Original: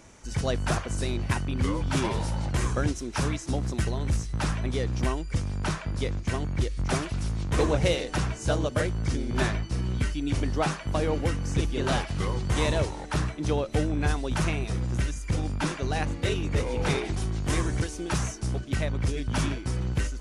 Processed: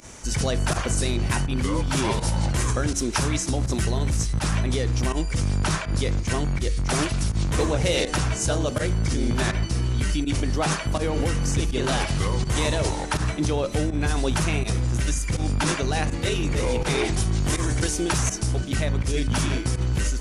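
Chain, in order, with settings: in parallel at +1 dB: negative-ratio compressor -30 dBFS, ratio -0.5; on the sum: high shelf 5300 Hz +7.5 dB; pump 82 bpm, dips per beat 1, -18 dB, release 61 ms; de-hum 93.1 Hz, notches 28

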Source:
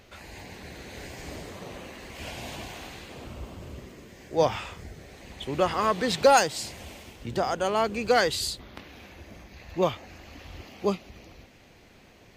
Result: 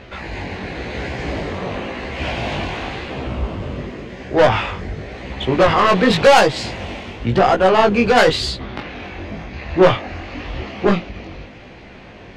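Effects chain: LPF 3100 Hz 12 dB/oct; tube stage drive 20 dB, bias 0.45; sine folder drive 10 dB, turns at -11 dBFS; chorus 0.93 Hz, delay 15 ms, depth 6.4 ms; 8.59–11.04 doubler 24 ms -6 dB; gain +6.5 dB

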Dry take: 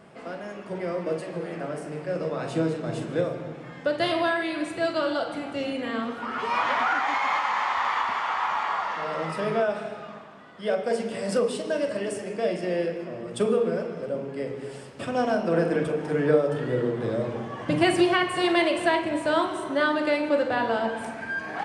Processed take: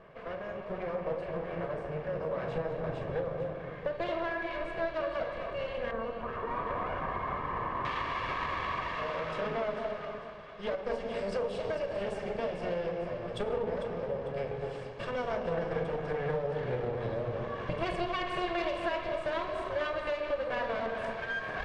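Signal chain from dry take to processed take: minimum comb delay 1.8 ms; LPF 2400 Hz 12 dB/oct, from 5.91 s 1100 Hz, from 7.85 s 3800 Hz; compressor 3:1, threshold -31 dBFS, peak gain reduction 11.5 dB; echo with dull and thin repeats by turns 0.224 s, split 930 Hz, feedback 58%, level -5.5 dB; gain -1.5 dB

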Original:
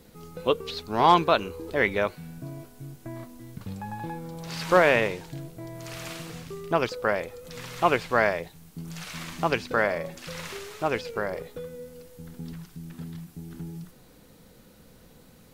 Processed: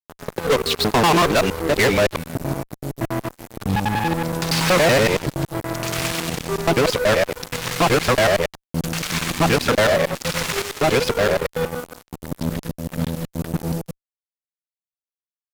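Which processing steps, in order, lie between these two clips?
local time reversal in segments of 94 ms; fuzz box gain 33 dB, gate -40 dBFS

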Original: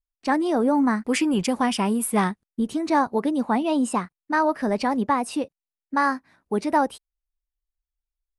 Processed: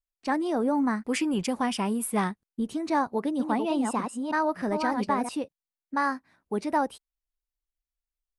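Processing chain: 3.09–5.29 reverse delay 0.306 s, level -5 dB; gain -5 dB

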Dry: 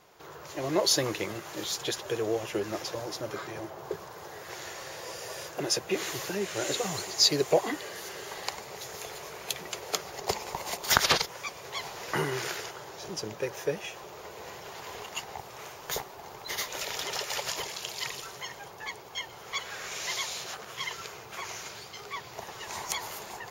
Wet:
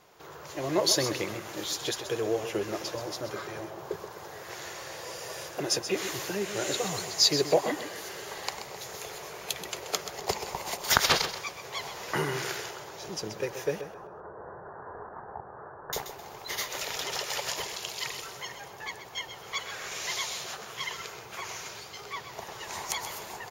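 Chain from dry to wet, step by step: 13.81–15.93 steep low-pass 1700 Hz 96 dB/oct; feedback echo 0.13 s, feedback 30%, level -10.5 dB

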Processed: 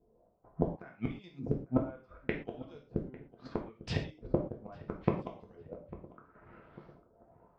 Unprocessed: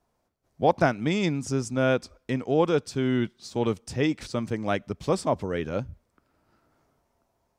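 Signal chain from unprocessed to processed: low-pass opened by the level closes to 2200 Hz, open at -22.5 dBFS; transient shaper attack +7 dB, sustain -3 dB; in parallel at +1.5 dB: level quantiser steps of 23 dB; on the sum: limiter -8.5 dBFS, peak gain reduction 8.5 dB; LFO low-pass saw up 0.72 Hz 380–5100 Hz; flipped gate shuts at -16 dBFS, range -37 dB; on a send: darkening echo 0.849 s, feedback 54%, low-pass 1300 Hz, level -17 dB; on the sum: non-linear reverb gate 0.15 s falling, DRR 0.5 dB

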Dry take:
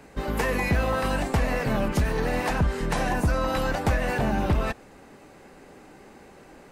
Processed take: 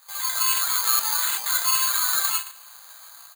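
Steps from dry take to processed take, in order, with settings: LPF 1700 Hz; reverb removal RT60 1 s; HPF 500 Hz 24 dB/oct; tilt -2.5 dB/oct; limiter -24 dBFS, peak gain reduction 7.5 dB; AGC gain up to 8 dB; feedback echo 0.138 s, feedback 59%, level -18.5 dB; reverb RT60 0.55 s, pre-delay 5 ms, DRR -1.5 dB; speed mistake 7.5 ips tape played at 15 ips; careless resampling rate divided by 8×, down filtered, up zero stuff; crackling interface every 0.38 s, samples 2048, repeat, from 0.52; gain -10.5 dB

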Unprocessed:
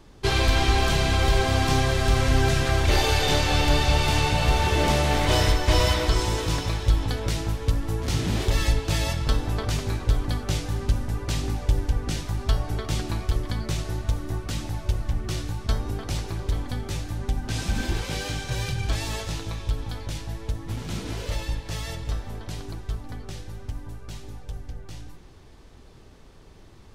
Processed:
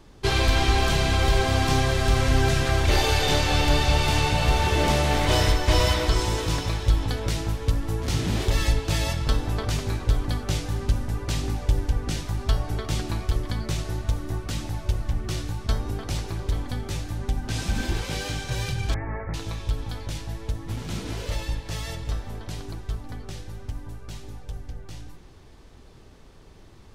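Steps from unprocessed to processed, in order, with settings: 18.94–19.34 steep low-pass 2200 Hz 96 dB/oct

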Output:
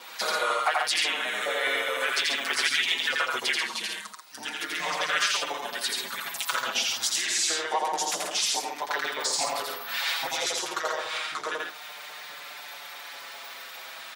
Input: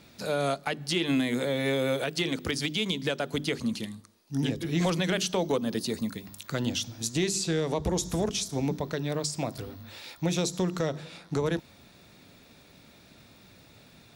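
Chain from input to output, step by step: in parallel at -3 dB: limiter -28 dBFS, peak gain reduction 9.5 dB; on the sum: compressor 16:1, threshold -30 dBFS, peak gain reduction 10.5 dB; LFO high-pass saw up 4.8 Hz 760–2000 Hz; vibrato 0.73 Hz 6.7 cents; harmoniser -3 st -3 dB; on a send: loudspeakers at several distances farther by 29 m -2 dB, 47 m -5 dB; on the sum: endless flanger 5.8 ms -0.28 Hz; gain +8.5 dB

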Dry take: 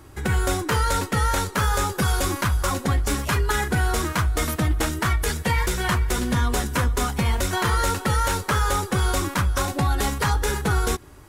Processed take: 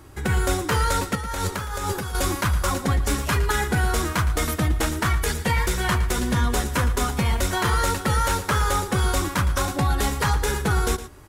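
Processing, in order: 1.15–2.15 negative-ratio compressor -28 dBFS, ratio -1; echo 0.113 s -13.5 dB

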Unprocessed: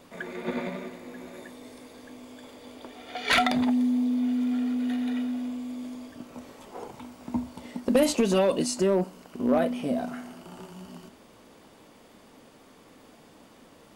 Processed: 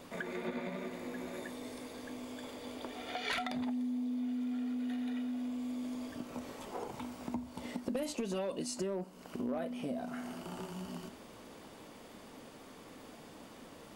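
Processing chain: compressor 4:1, threshold -38 dBFS, peak gain reduction 17.5 dB; gain +1 dB

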